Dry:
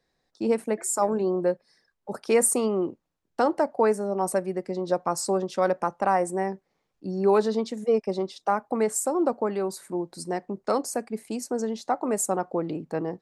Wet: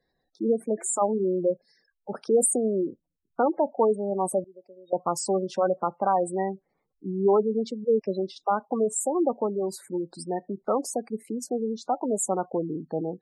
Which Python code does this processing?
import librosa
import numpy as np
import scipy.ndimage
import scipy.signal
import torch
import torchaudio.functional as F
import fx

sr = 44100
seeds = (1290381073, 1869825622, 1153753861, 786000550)

y = fx.spec_gate(x, sr, threshold_db=-15, keep='strong')
y = fx.double_bandpass(y, sr, hz=1600.0, octaves=2.2, at=(4.44, 4.93))